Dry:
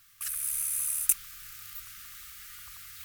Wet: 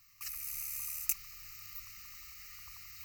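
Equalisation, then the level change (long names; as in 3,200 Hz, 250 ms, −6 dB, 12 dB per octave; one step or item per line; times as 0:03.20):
phaser with its sweep stopped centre 2,300 Hz, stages 8
−1.0 dB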